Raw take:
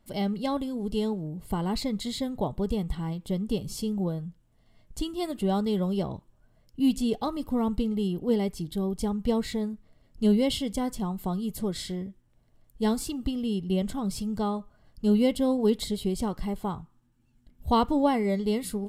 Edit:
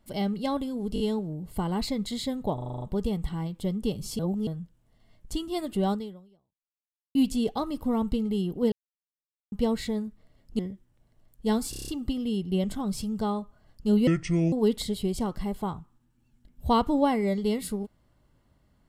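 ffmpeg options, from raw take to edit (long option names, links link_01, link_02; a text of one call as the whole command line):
ffmpeg -i in.wav -filter_complex "[0:a]asplit=25[link_01][link_02][link_03][link_04][link_05][link_06][link_07][link_08][link_09][link_10][link_11][link_12][link_13][link_14][link_15][link_16][link_17][link_18][link_19][link_20][link_21][link_22][link_23][link_24][link_25];[link_01]atrim=end=0.962[link_26];[link_02]atrim=start=0.938:end=0.962[link_27];[link_03]atrim=start=0.938:end=0.962[link_28];[link_04]atrim=start=0.938:end=2.522[link_29];[link_05]atrim=start=2.478:end=2.522[link_30];[link_06]atrim=start=2.478:end=2.522[link_31];[link_07]atrim=start=2.478:end=2.522[link_32];[link_08]atrim=start=2.478:end=2.522[link_33];[link_09]atrim=start=2.478:end=2.522[link_34];[link_10]atrim=start=2.478:end=2.522[link_35];[link_11]atrim=start=2.478:end=3.852[link_36];[link_12]atrim=start=3.848:end=4.132,asetpts=PTS-STARTPTS,areverse[link_37];[link_13]atrim=start=4.128:end=6.81,asetpts=PTS-STARTPTS,afade=type=out:start_time=1.452:duration=1.23:curve=exp[link_38];[link_14]atrim=start=6.81:end=8.38,asetpts=PTS-STARTPTS,afade=type=in:duration=0.004:curve=hsin,afade=type=out:start_time=1.566:duration=0.004:curve=hsin[link_39];[link_15]atrim=start=8.38:end=9.18,asetpts=PTS-STARTPTS,volume=0[link_40];[link_16]atrim=start=9.18:end=10.252,asetpts=PTS-STARTPTS,afade=type=in:duration=0.004:curve=hsin[link_41];[link_17]atrim=start=11.948:end=13.092[link_42];[link_18]atrim=start=13.058:end=13.092[link_43];[link_19]atrim=start=13.058:end=13.092[link_44];[link_20]atrim=start=13.058:end=13.092[link_45];[link_21]atrim=start=13.058:end=13.092[link_46];[link_22]atrim=start=13.058:end=13.092[link_47];[link_23]atrim=start=13.058:end=15.254[link_48];[link_24]atrim=start=15.25:end=15.54,asetpts=PTS-STARTPTS,asetrate=28224,aresample=44100[link_49];[link_25]atrim=start=15.536[link_50];[link_26][link_27]acrossfade=duration=0.004:curve1=hsin:curve2=hsin[link_51];[link_51][link_28]acrossfade=duration=0.004:curve1=hsin:curve2=hsin[link_52];[link_52][link_29]acrossfade=duration=0.004:curve1=hsin:curve2=hsin[link_53];[link_53][link_30]acrossfade=duration=0.004:curve1=hsin:curve2=hsin[link_54];[link_54][link_31]acrossfade=duration=0.004:curve1=hsin:curve2=hsin[link_55];[link_55][link_32]acrossfade=duration=0.004:curve1=hsin:curve2=hsin[link_56];[link_56][link_33]acrossfade=duration=0.004:curve1=hsin:curve2=hsin[link_57];[link_57][link_34]acrossfade=duration=0.004:curve1=hsin:curve2=hsin[link_58];[link_58][link_35]acrossfade=duration=0.004:curve1=hsin:curve2=hsin[link_59];[link_59][link_36]acrossfade=duration=0.004:curve1=hsin:curve2=hsin[link_60];[link_60][link_37]acrossfade=duration=0.004:curve1=hsin:curve2=hsin[link_61];[link_38][link_39][link_40][link_41]concat=n=4:v=0:a=1[link_62];[link_61][link_62]acrossfade=duration=0.004:curve1=hsin:curve2=hsin[link_63];[link_63][link_42]acrossfade=duration=0.004:curve1=hsin:curve2=hsin[link_64];[link_64][link_43]acrossfade=duration=0.004:curve1=hsin:curve2=hsin[link_65];[link_65][link_44]acrossfade=duration=0.004:curve1=hsin:curve2=hsin[link_66];[link_66][link_45]acrossfade=duration=0.004:curve1=hsin:curve2=hsin[link_67];[link_67][link_46]acrossfade=duration=0.004:curve1=hsin:curve2=hsin[link_68];[link_68][link_47]acrossfade=duration=0.004:curve1=hsin:curve2=hsin[link_69];[link_69][link_48]acrossfade=duration=0.004:curve1=hsin:curve2=hsin[link_70];[link_70][link_49]acrossfade=duration=0.004:curve1=hsin:curve2=hsin[link_71];[link_71][link_50]acrossfade=duration=0.004:curve1=hsin:curve2=hsin" out.wav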